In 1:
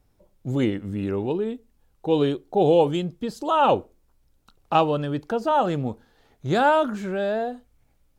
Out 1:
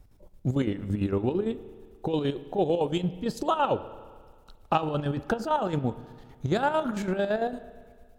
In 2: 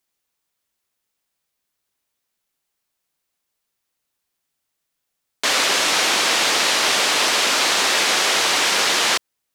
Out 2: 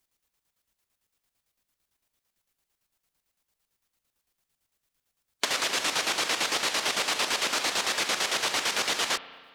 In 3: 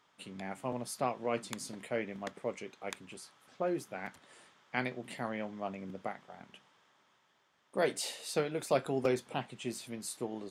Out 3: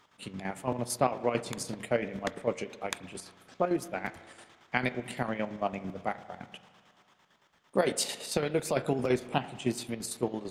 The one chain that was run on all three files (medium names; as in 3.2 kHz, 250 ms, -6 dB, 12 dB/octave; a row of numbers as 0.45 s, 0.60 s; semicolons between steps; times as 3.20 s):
harmonic-percussive split harmonic -3 dB; bass shelf 100 Hz +10 dB; compression 5:1, threshold -26 dBFS; square tremolo 8.9 Hz, depth 60%, duty 50%; spring tank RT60 1.8 s, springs 33/44 ms, chirp 25 ms, DRR 14.5 dB; peak normalisation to -9 dBFS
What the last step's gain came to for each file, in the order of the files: +5.0 dB, +2.5 dB, +8.5 dB